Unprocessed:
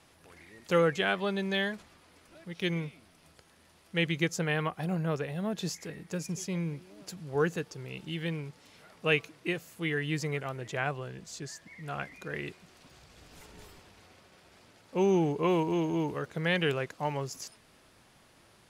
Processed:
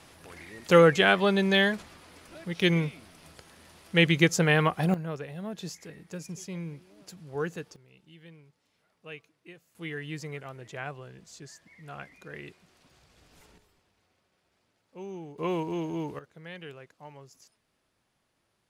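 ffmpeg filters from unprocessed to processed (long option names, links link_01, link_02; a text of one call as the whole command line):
ffmpeg -i in.wav -af "asetnsamples=nb_out_samples=441:pad=0,asendcmd='4.94 volume volume -4dB;7.76 volume volume -17dB;9.75 volume volume -5.5dB;13.58 volume volume -15dB;15.38 volume volume -3dB;16.19 volume volume -15dB',volume=7.5dB" out.wav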